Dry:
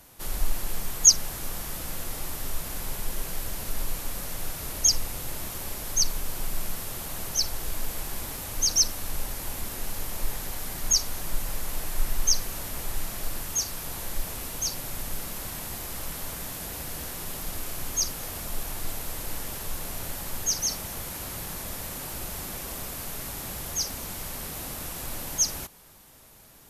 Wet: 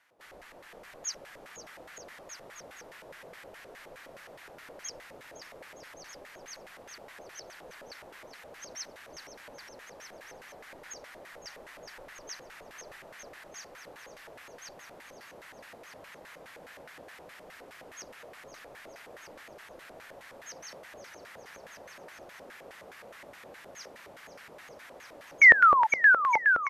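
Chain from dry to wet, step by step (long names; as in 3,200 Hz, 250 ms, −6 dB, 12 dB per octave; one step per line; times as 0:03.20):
sound drawn into the spectrogram fall, 0:25.41–0:25.87, 850–2,300 Hz −9 dBFS
bouncing-ball delay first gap 510 ms, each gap 0.8×, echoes 5
auto-filter band-pass square 4.8 Hz 540–1,800 Hz
level −2.5 dB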